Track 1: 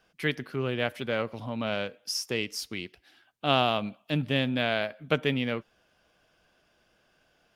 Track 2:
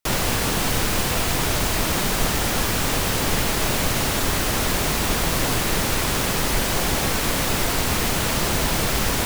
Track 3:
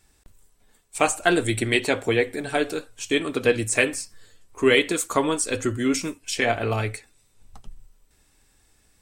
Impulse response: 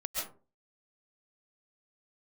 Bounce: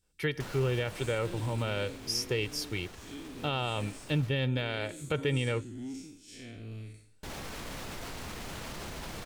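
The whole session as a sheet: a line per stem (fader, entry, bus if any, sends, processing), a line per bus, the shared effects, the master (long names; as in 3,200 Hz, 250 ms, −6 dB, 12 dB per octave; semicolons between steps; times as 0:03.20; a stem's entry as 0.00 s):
−2.0 dB, 0.00 s, no send, downward expander −58 dBFS; parametric band 77 Hz +12.5 dB 1.7 octaves; comb filter 2.2 ms, depth 59%
−16.0 dB, 0.35 s, muted 0:04.29–0:07.23, no send, brickwall limiter −15.5 dBFS, peak gain reduction 7 dB; high-shelf EQ 9,700 Hz −10.5 dB; envelope flattener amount 50%; automatic ducking −9 dB, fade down 1.90 s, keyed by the first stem
−13.0 dB, 0.00 s, send −16.5 dB, spectrum smeared in time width 155 ms; drawn EQ curve 280 Hz 0 dB, 820 Hz −24 dB, 4,100 Hz −2 dB; soft clipping −20 dBFS, distortion −23 dB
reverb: on, RT60 0.35 s, pre-delay 95 ms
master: brickwall limiter −20.5 dBFS, peak gain reduction 9.5 dB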